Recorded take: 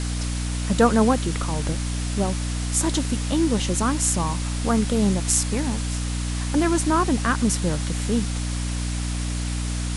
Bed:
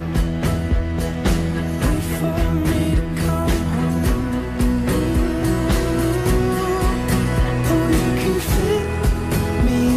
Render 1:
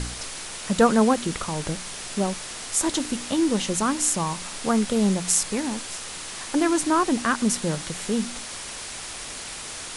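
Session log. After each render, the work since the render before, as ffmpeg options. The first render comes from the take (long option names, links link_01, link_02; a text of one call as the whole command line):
ffmpeg -i in.wav -af "bandreject=frequency=60:width_type=h:width=4,bandreject=frequency=120:width_type=h:width=4,bandreject=frequency=180:width_type=h:width=4,bandreject=frequency=240:width_type=h:width=4,bandreject=frequency=300:width_type=h:width=4" out.wav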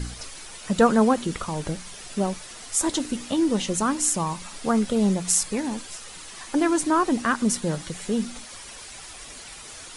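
ffmpeg -i in.wav -af "afftdn=noise_reduction=9:noise_floor=-36" out.wav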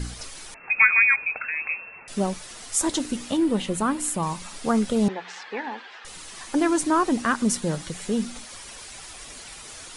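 ffmpeg -i in.wav -filter_complex "[0:a]asettb=1/sr,asplit=3[link_01][link_02][link_03];[link_01]atrim=end=0.544[link_04];[link_02]atrim=start=0.54:end=2.08,asetpts=PTS-STARTPTS,afade=type=in:duration=0.004:curve=qsin,afade=type=out:start_time=1.536:duration=0.004:curve=qsin,lowpass=frequency=2300:width_type=q:width=0.5098,lowpass=frequency=2300:width_type=q:width=0.6013,lowpass=frequency=2300:width_type=q:width=0.9,lowpass=frequency=2300:width_type=q:width=2.563,afreqshift=-2700[link_05];[link_03]atrim=start=2.076[link_06];[link_04][link_05]acrossfade=duration=0.004:curve1=hsin:curve2=qsin[link_07];[link_07][link_06]acrossfade=duration=0.004:curve1=qsin:curve2=hsin,asettb=1/sr,asplit=3[link_08][link_09][link_10];[link_08]atrim=end=3.374[link_11];[link_09]atrim=start=3.37:end=4.23,asetpts=PTS-STARTPTS,afade=type=in:duration=0.004:curve=qsin,afade=type=out:start_time=0.856:duration=0.004:curve=qsin,equalizer=frequency=6000:width=1.5:gain=-11.5[link_12];[link_10]atrim=start=4.226[link_13];[link_11][link_12]acrossfade=duration=0.004:curve1=hsin:curve2=qsin[link_14];[link_14][link_13]acrossfade=duration=0.004:curve1=qsin:curve2=hsin,asettb=1/sr,asplit=3[link_15][link_16][link_17];[link_15]atrim=end=5.084[link_18];[link_16]atrim=start=5.08:end=6.05,asetpts=PTS-STARTPTS,afade=type=in:duration=0.004:curve=qsin,afade=type=out:start_time=0.966:duration=0.004:curve=qsin,highpass=frequency=310:width=0.5412,highpass=frequency=310:width=1.3066,equalizer=frequency=310:width_type=q:width=4:gain=-9,equalizer=frequency=590:width_type=q:width=4:gain=-6,equalizer=frequency=840:width_type=q:width=4:gain=7,equalizer=frequency=1700:width_type=q:width=4:gain=9,lowpass=frequency=3500:width=0.5412,lowpass=frequency=3500:width=1.3066[link_19];[link_17]atrim=start=6.046[link_20];[link_18][link_19]acrossfade=duration=0.004:curve1=hsin:curve2=qsin[link_21];[link_21][link_20]acrossfade=duration=0.004:curve1=qsin:curve2=hsin" out.wav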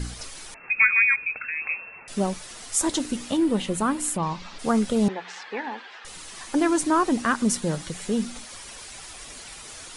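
ffmpeg -i in.wav -filter_complex "[0:a]asettb=1/sr,asplit=3[link_01][link_02][link_03];[link_01]atrim=end=0.674[link_04];[link_02]atrim=start=0.67:end=1.62,asetpts=PTS-STARTPTS,afade=type=in:duration=0.004:curve=qsin,afade=type=out:start_time=0.946:duration=0.004:curve=qsin,equalizer=frequency=760:width_type=o:width=1.4:gain=-9.5[link_05];[link_03]atrim=start=1.616[link_06];[link_04][link_05]acrossfade=duration=0.004:curve1=hsin:curve2=qsin[link_07];[link_07][link_06]acrossfade=duration=0.004:curve1=qsin:curve2=hsin,asplit=3[link_08][link_09][link_10];[link_08]afade=type=out:start_time=4.16:duration=0.02[link_11];[link_09]lowpass=frequency=5100:width=0.5412,lowpass=frequency=5100:width=1.3066,afade=type=in:start_time=4.16:duration=0.02,afade=type=out:start_time=4.58:duration=0.02[link_12];[link_10]afade=type=in:start_time=4.58:duration=0.02[link_13];[link_11][link_12][link_13]amix=inputs=3:normalize=0" out.wav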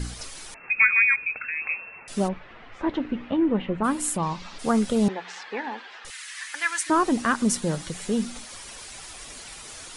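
ffmpeg -i in.wav -filter_complex "[0:a]asplit=3[link_01][link_02][link_03];[link_01]afade=type=out:start_time=2.27:duration=0.02[link_04];[link_02]lowpass=frequency=2500:width=0.5412,lowpass=frequency=2500:width=1.3066,afade=type=in:start_time=2.27:duration=0.02,afade=type=out:start_time=3.83:duration=0.02[link_05];[link_03]afade=type=in:start_time=3.83:duration=0.02[link_06];[link_04][link_05][link_06]amix=inputs=3:normalize=0,asettb=1/sr,asplit=3[link_07][link_08][link_09];[link_07]atrim=end=6.104[link_10];[link_08]atrim=start=6.1:end=6.9,asetpts=PTS-STARTPTS,afade=type=in:duration=0.004:curve=qsin,afade=type=out:start_time=0.796:duration=0.004:curve=qsin,highpass=frequency=1800:width_type=q:width=2.8[link_11];[link_09]atrim=start=6.896[link_12];[link_10][link_11]acrossfade=duration=0.004:curve1=hsin:curve2=qsin[link_13];[link_13][link_12]acrossfade=duration=0.004:curve1=qsin:curve2=hsin" out.wav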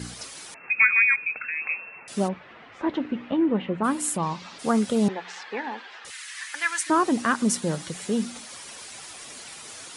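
ffmpeg -i in.wav -af "highpass=120" out.wav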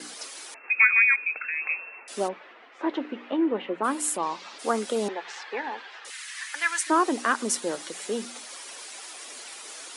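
ffmpeg -i in.wav -af "agate=range=-33dB:threshold=-43dB:ratio=3:detection=peak,highpass=frequency=300:width=0.5412,highpass=frequency=300:width=1.3066" out.wav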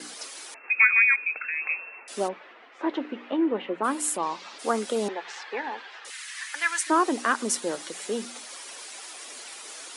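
ffmpeg -i in.wav -af anull out.wav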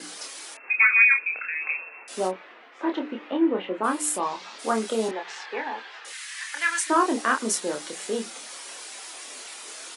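ffmpeg -i in.wav -filter_complex "[0:a]asplit=2[link_01][link_02];[link_02]adelay=27,volume=-4.5dB[link_03];[link_01][link_03]amix=inputs=2:normalize=0" out.wav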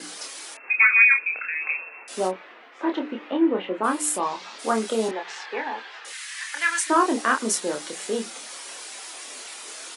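ffmpeg -i in.wav -af "volume=1.5dB" out.wav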